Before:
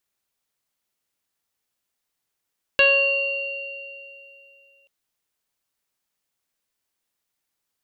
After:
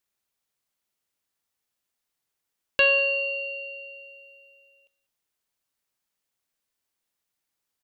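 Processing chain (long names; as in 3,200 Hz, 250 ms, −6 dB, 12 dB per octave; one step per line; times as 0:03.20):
single-tap delay 193 ms −21.5 dB
level −2.5 dB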